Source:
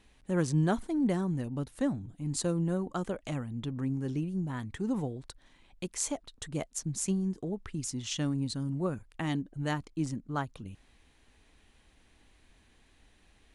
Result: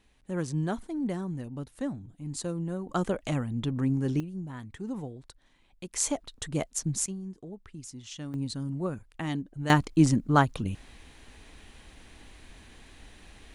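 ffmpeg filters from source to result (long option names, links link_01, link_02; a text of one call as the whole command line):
ffmpeg -i in.wav -af "asetnsamples=nb_out_samples=441:pad=0,asendcmd='2.89 volume volume 5.5dB;4.2 volume volume -4dB;5.93 volume volume 4.5dB;7.06 volume volume -7.5dB;8.34 volume volume 0dB;9.7 volume volume 12dB',volume=-3dB" out.wav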